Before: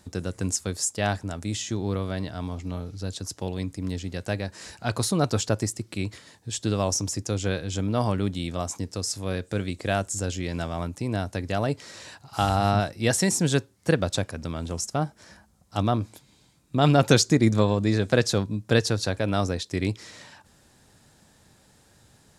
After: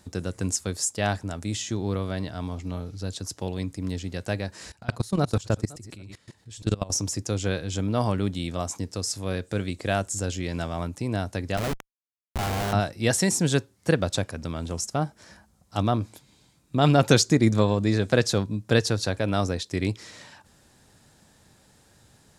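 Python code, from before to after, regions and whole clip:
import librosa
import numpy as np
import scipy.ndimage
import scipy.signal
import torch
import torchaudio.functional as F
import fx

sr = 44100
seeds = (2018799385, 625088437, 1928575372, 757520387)

y = fx.chain(x, sr, fx.reverse_delay(ms=288, wet_db=-13.5),
    fx.low_shelf(hz=92.0, db=10.0),
    fx.level_steps(step_db=21), at=(4.61, 6.9))
y = fx.chain(y, sr, fx.peak_eq(hz=160.0, db=-8.5, octaves=0.42),
    fx.schmitt(flips_db=-30.5), at=(11.57, 12.73))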